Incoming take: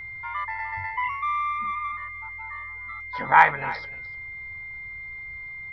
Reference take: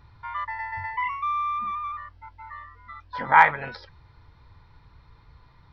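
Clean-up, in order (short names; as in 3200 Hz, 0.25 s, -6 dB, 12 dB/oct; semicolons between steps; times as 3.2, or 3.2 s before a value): notch 2100 Hz, Q 30; inverse comb 0.301 s -17 dB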